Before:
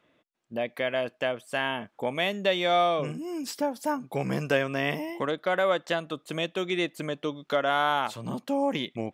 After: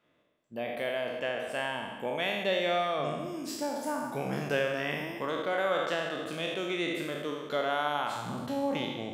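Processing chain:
peak hold with a decay on every bin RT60 1.27 s
on a send: delay with a low-pass on its return 68 ms, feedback 66%, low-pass 1,700 Hz, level −9 dB
on the sum: level −7 dB

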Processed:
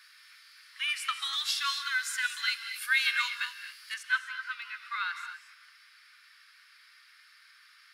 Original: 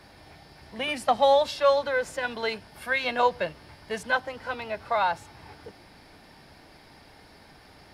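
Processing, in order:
Butterworth high-pass 1,200 Hz 72 dB per octave
high-shelf EQ 4,100 Hz +3 dB, from 0:01.33 +11 dB, from 0:03.94 −3 dB
reverb whose tail is shaped and stops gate 270 ms rising, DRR 7.5 dB
level −1 dB

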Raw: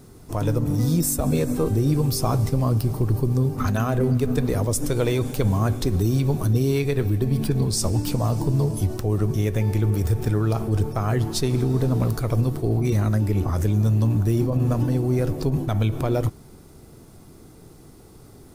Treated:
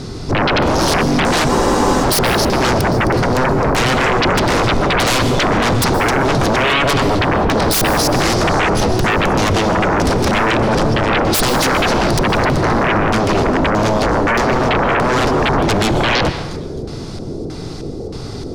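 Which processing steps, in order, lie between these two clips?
auto-filter low-pass square 1.6 Hz 510–4,800 Hz
delay with a high-pass on its return 262 ms, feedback 37%, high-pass 4,800 Hz, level −8.5 dB
sine wavefolder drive 20 dB, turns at −7 dBFS
dense smooth reverb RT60 1 s, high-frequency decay 0.7×, pre-delay 110 ms, DRR 10.5 dB
frozen spectrum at 0:01.51, 0.53 s
level −4.5 dB

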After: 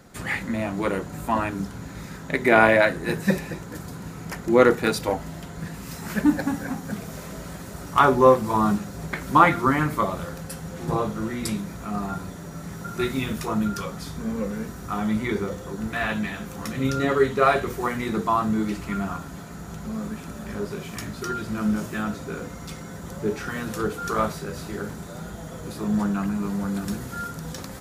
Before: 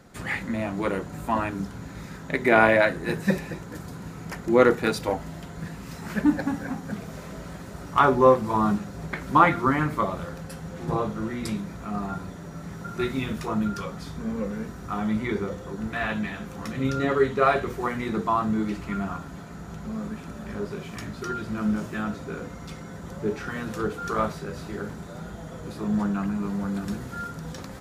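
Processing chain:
high-shelf EQ 6,800 Hz +5.5 dB, from 0:05.74 +10.5 dB
level +1.5 dB

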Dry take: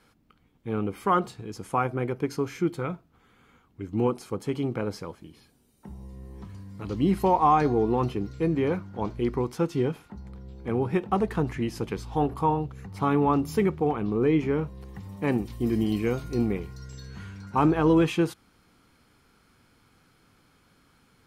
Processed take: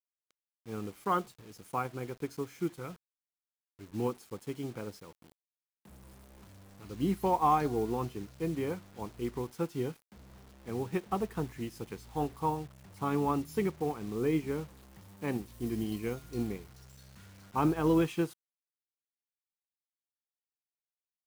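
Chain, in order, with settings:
high-shelf EQ 7,400 Hz +10 dB
bit reduction 7 bits
expander for the loud parts 1.5 to 1, over −35 dBFS
level −5.5 dB

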